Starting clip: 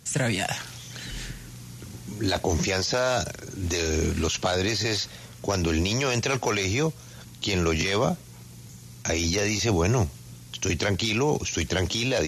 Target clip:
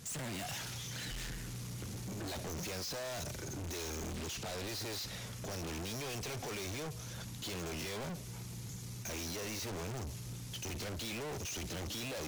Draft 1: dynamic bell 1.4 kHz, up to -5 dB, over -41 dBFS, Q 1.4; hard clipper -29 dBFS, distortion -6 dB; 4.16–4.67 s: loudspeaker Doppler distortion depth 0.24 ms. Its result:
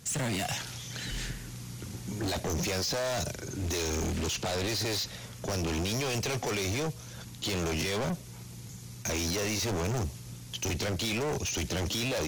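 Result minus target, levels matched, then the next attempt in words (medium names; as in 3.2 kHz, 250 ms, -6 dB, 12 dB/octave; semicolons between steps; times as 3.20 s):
hard clipper: distortion -5 dB
dynamic bell 1.4 kHz, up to -5 dB, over -41 dBFS, Q 1.4; hard clipper -40 dBFS, distortion -2 dB; 4.16–4.67 s: loudspeaker Doppler distortion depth 0.24 ms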